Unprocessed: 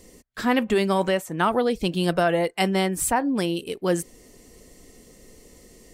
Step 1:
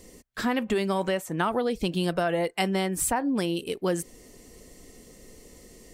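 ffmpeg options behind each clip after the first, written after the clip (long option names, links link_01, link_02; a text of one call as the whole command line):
ffmpeg -i in.wav -af "acompressor=threshold=-23dB:ratio=3" out.wav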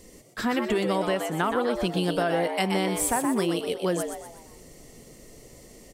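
ffmpeg -i in.wav -filter_complex "[0:a]asplit=6[link_01][link_02][link_03][link_04][link_05][link_06];[link_02]adelay=123,afreqshift=110,volume=-6dB[link_07];[link_03]adelay=246,afreqshift=220,volume=-13.5dB[link_08];[link_04]adelay=369,afreqshift=330,volume=-21.1dB[link_09];[link_05]adelay=492,afreqshift=440,volume=-28.6dB[link_10];[link_06]adelay=615,afreqshift=550,volume=-36.1dB[link_11];[link_01][link_07][link_08][link_09][link_10][link_11]amix=inputs=6:normalize=0" out.wav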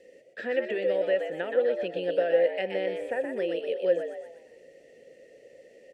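ffmpeg -i in.wav -filter_complex "[0:a]acrossover=split=3200[link_01][link_02];[link_02]acompressor=threshold=-40dB:ratio=4:attack=1:release=60[link_03];[link_01][link_03]amix=inputs=2:normalize=0,asplit=3[link_04][link_05][link_06];[link_04]bandpass=frequency=530:width_type=q:width=8,volume=0dB[link_07];[link_05]bandpass=frequency=1840:width_type=q:width=8,volume=-6dB[link_08];[link_06]bandpass=frequency=2480:width_type=q:width=8,volume=-9dB[link_09];[link_07][link_08][link_09]amix=inputs=3:normalize=0,volume=7.5dB" out.wav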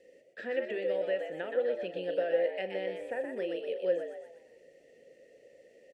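ffmpeg -i in.wav -filter_complex "[0:a]asplit=2[link_01][link_02];[link_02]adelay=38,volume=-13.5dB[link_03];[link_01][link_03]amix=inputs=2:normalize=0,volume=-5.5dB" out.wav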